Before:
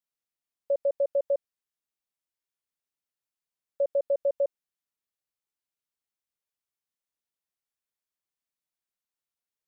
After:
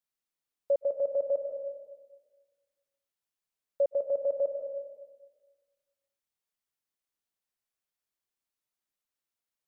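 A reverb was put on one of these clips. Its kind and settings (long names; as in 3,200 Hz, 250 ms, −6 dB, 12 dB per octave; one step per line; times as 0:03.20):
comb and all-pass reverb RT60 1.4 s, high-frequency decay 0.4×, pre-delay 110 ms, DRR 7 dB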